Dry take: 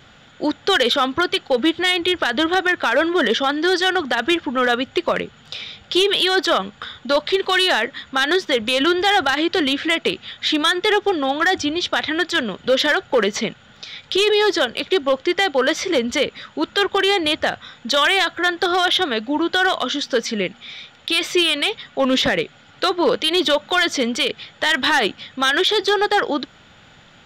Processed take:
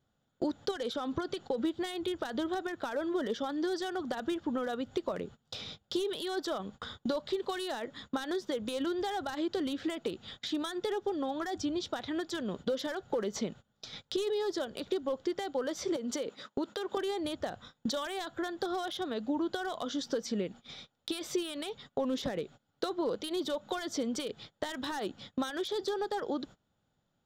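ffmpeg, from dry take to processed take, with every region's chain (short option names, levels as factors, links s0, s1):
-filter_complex "[0:a]asettb=1/sr,asplit=3[s0][s1][s2];[s0]atrim=end=0.714[s3];[s1]atrim=start=0.71:end=1.65,asetpts=PTS-STARTPTS,afade=t=in:d=0.004:c=qsin,afade=t=out:st=0.936:d=0.004:c=qsin,lowpass=9400,acompressor=threshold=0.0794:ratio=2:attack=3.2:release=140:knee=1:detection=peak[s4];[s2]atrim=start=1.646[s5];[s3][s4]acrossfade=d=0.004:c1=hsin:c2=qsin[s6];[s6][s5]acrossfade=d=0.004:c1=qsin:c2=hsin,asettb=1/sr,asplit=3[s7][s8][s9];[s7]atrim=end=15.964[s10];[s8]atrim=start=15.96:end=16.97,asetpts=PTS-STARTPTS,afade=t=in:d=0.004:c=qsin,afade=t=out:st=1.006:d=0.004:c=qsin,highpass=230,acompressor=threshold=0.0708:ratio=4:attack=3.2:release=140:knee=1:detection=peak[s11];[s9]atrim=start=16.966[s12];[s10][s11]acrossfade=d=0.004:c1=hsin:c2=qsin[s13];[s13][s12]acrossfade=d=0.004:c1=qsin:c2=hsin,agate=range=0.0501:threshold=0.0178:ratio=16:detection=peak,acompressor=threshold=0.0398:ratio=8,equalizer=f=2300:w=0.78:g=-15"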